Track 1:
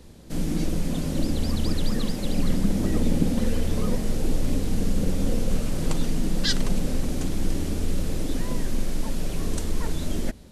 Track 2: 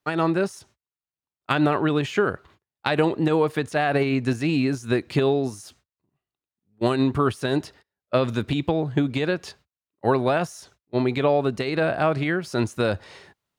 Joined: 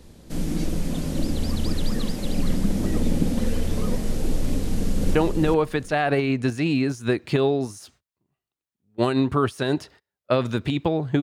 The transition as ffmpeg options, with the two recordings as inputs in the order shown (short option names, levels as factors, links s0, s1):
-filter_complex "[0:a]apad=whole_dur=11.22,atrim=end=11.22,atrim=end=5.152[s0];[1:a]atrim=start=2.978:end=9.05[s1];[s0][s1]acrossfade=d=0.004:c1=hsin:c2=hsin,asplit=2[s2][s3];[s3]afade=t=in:st=4.62:d=0.01,afade=t=out:st=5.15:d=0.01,aecho=0:1:390|780|1170:0.562341|0.0843512|0.0126527[s4];[s2][s4]amix=inputs=2:normalize=0"